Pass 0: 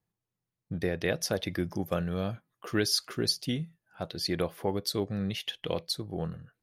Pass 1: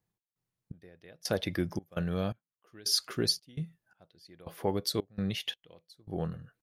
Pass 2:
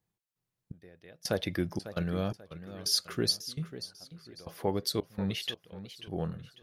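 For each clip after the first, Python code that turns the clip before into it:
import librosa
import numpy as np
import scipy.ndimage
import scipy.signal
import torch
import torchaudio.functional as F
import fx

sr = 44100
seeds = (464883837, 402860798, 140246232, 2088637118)

y1 = fx.step_gate(x, sr, bpm=84, pattern='x.xx...xx', floor_db=-24.0, edge_ms=4.5)
y2 = fx.echo_warbled(y1, sr, ms=543, feedback_pct=32, rate_hz=2.8, cents=156, wet_db=-13.0)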